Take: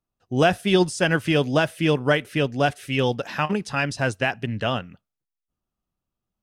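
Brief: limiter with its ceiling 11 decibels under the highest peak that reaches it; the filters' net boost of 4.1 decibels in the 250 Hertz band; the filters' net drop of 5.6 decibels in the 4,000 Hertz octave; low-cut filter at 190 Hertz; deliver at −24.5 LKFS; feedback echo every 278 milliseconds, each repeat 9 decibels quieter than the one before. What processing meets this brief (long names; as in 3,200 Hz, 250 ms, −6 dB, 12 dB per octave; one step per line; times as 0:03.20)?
high-pass filter 190 Hz
parametric band 250 Hz +7.5 dB
parametric band 4,000 Hz −8.5 dB
brickwall limiter −15 dBFS
repeating echo 278 ms, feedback 35%, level −9 dB
level +1.5 dB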